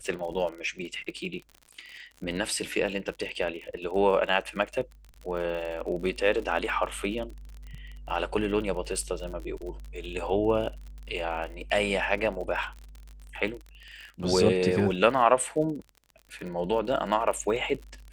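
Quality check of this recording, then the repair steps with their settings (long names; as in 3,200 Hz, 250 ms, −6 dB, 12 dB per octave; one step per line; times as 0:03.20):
surface crackle 45 per second −36 dBFS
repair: click removal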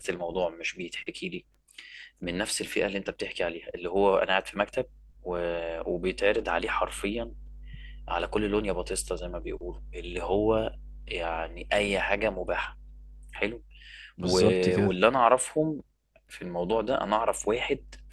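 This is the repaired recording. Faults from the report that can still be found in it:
none of them is left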